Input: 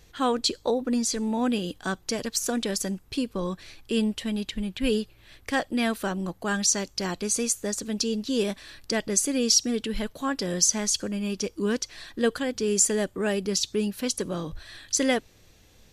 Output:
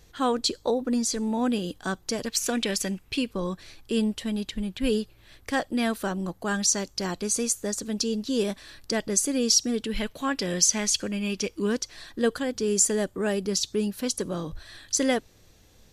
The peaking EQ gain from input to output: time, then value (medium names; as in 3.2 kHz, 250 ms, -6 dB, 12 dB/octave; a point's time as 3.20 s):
peaking EQ 2.5 kHz 0.94 oct
-3 dB
from 2.28 s +8 dB
from 3.31 s -3 dB
from 9.92 s +6 dB
from 11.67 s -3.5 dB